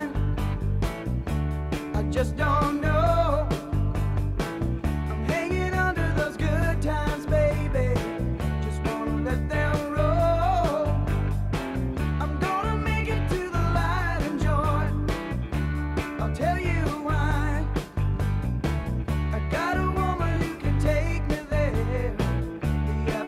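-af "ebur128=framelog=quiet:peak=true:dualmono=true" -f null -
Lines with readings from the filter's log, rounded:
Integrated loudness:
  I:         -23.2 LUFS
  Threshold: -33.2 LUFS
Loudness range:
  LRA:         1.6 LU
  Threshold: -43.1 LUFS
  LRA low:   -23.9 LUFS
  LRA high:  -22.3 LUFS
True peak:
  Peak:      -10.7 dBFS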